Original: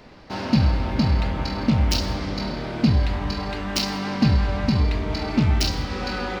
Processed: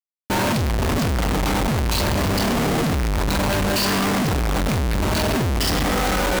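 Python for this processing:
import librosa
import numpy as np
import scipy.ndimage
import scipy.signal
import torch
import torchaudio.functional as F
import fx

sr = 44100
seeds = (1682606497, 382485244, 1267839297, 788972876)

y = fx.spec_ripple(x, sr, per_octave=1.4, drift_hz=0.65, depth_db=15)
y = fx.schmitt(y, sr, flips_db=-32.0)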